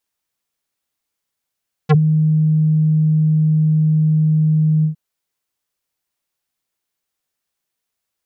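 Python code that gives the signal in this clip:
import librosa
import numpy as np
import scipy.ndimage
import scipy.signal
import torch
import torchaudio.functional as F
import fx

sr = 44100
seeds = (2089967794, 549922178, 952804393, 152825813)

y = fx.sub_voice(sr, note=51, wave='square', cutoff_hz=210.0, q=0.84, env_oct=5.5, env_s=0.06, attack_ms=22.0, decay_s=0.09, sustain_db=-5.5, release_s=0.11, note_s=2.95, slope=24)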